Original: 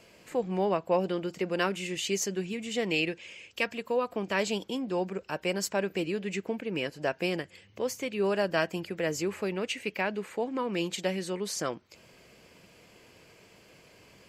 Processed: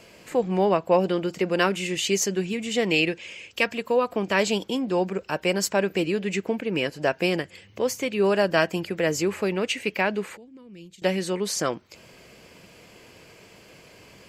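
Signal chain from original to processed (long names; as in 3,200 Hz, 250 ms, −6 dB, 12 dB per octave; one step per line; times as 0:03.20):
0:10.37–0:11.02: guitar amp tone stack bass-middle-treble 10-0-1
level +6.5 dB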